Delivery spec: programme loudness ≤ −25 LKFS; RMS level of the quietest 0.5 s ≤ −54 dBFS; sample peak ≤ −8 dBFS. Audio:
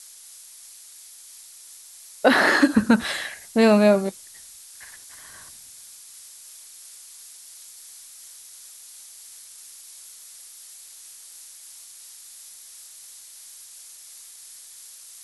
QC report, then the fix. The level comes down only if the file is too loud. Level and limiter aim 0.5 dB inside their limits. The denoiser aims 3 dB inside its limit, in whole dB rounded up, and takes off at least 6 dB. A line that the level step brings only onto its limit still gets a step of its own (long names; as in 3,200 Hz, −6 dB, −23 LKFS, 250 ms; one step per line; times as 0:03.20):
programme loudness −19.5 LKFS: out of spec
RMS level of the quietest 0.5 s −46 dBFS: out of spec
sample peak −3.0 dBFS: out of spec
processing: broadband denoise 6 dB, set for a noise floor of −46 dBFS
level −6 dB